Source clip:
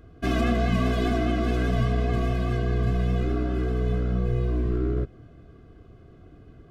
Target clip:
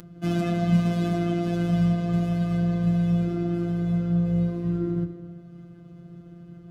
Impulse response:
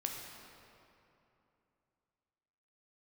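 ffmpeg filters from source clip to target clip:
-filter_complex "[0:a]bass=frequency=250:gain=14,treble=frequency=4000:gain=5,asplit=2[link_01][link_02];[1:a]atrim=start_sample=2205,afade=type=out:start_time=0.35:duration=0.01,atrim=end_sample=15876,asetrate=31311,aresample=44100[link_03];[link_02][link_03]afir=irnorm=-1:irlink=0,volume=-2dB[link_04];[link_01][link_04]amix=inputs=2:normalize=0,acompressor=mode=upward:threshold=-19dB:ratio=2.5,afftfilt=real='hypot(re,im)*cos(PI*b)':imag='0':win_size=1024:overlap=0.75,highpass=93,volume=-8dB"

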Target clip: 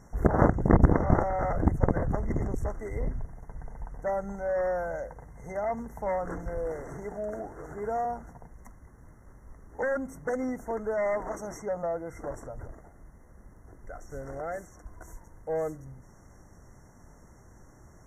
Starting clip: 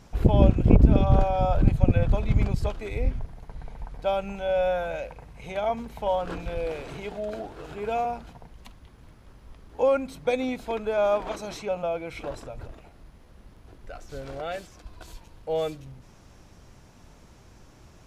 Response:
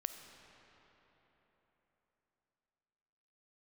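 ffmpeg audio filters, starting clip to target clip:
-af "aeval=exprs='0.668*(cos(1*acos(clip(val(0)/0.668,-1,1)))-cos(1*PI/2))+0.237*(cos(7*acos(clip(val(0)/0.668,-1,1)))-cos(7*PI/2))':channel_layout=same,afftfilt=real='re*(1-between(b*sr/4096,2100,5500))':imag='im*(1-between(b*sr/4096,2100,5500))':win_size=4096:overlap=0.75,volume=-5dB"

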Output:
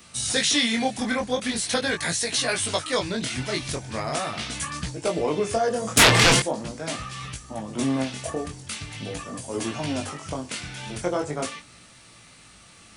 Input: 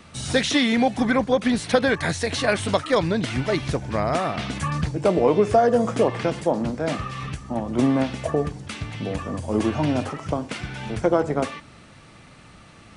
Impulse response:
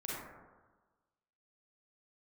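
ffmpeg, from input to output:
-filter_complex "[0:a]asettb=1/sr,asplit=3[link_01][link_02][link_03];[link_01]atrim=end=5.974[link_04];[link_02]atrim=start=5.97:end=6.4,asetpts=PTS-STARTPTS,afade=type=in:duration=0.004:curve=qsin,afade=type=out:start_time=0.426:duration=0.004:curve=qsin,aeval=exprs='0.422*sin(PI/2*5.62*val(0)/0.422)':channel_layout=same[link_05];[link_03]atrim=start=6.396[link_06];[link_04][link_05]acrossfade=duration=0.004:curve1=hsin:curve2=qsin[link_07];[link_07][link_06]acrossfade=duration=0.004:curve1=qsin:curve2=hsin,flanger=delay=16.5:depth=7.6:speed=0.42,crystalizer=i=5:c=0,volume=-4dB"

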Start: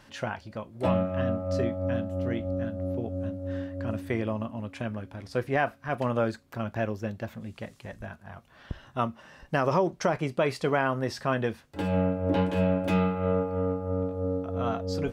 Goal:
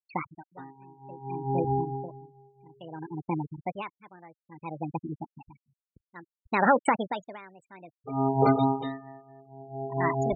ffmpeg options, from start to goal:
ffmpeg -i in.wav -af "afftfilt=real='re*gte(hypot(re,im),0.0562)':imag='im*gte(hypot(re,im),0.0562)':win_size=1024:overlap=0.75,asetrate=64386,aresample=44100,aeval=exprs='val(0)*pow(10,-28*(0.5-0.5*cos(2*PI*0.59*n/s))/20)':channel_layout=same,volume=4.5dB" out.wav

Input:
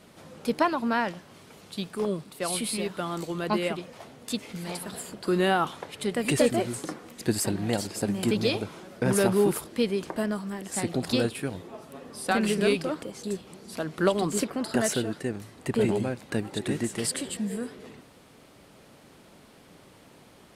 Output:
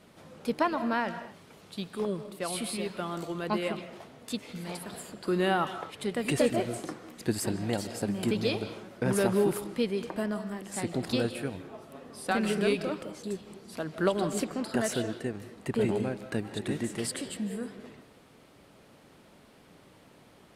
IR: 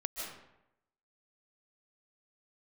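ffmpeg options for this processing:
-filter_complex "[0:a]asplit=2[link_01][link_02];[link_02]lowpass=4900[link_03];[1:a]atrim=start_sample=2205,afade=type=out:start_time=0.32:duration=0.01,atrim=end_sample=14553[link_04];[link_03][link_04]afir=irnorm=-1:irlink=0,volume=-8.5dB[link_05];[link_01][link_05]amix=inputs=2:normalize=0,volume=-5.5dB"

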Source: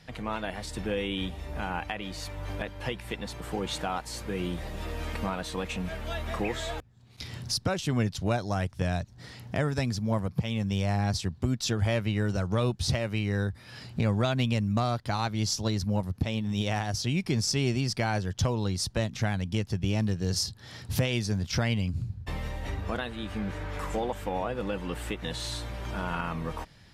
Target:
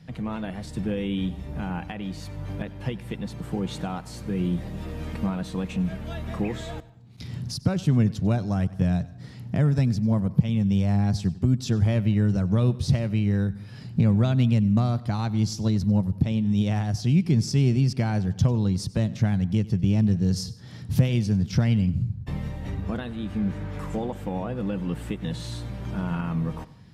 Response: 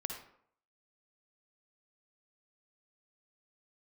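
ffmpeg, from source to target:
-filter_complex "[0:a]equalizer=frequency=160:width=0.64:gain=15,asplit=2[link_01][link_02];[1:a]atrim=start_sample=2205,adelay=96[link_03];[link_02][link_03]afir=irnorm=-1:irlink=0,volume=-18dB[link_04];[link_01][link_04]amix=inputs=2:normalize=0,volume=-5dB"

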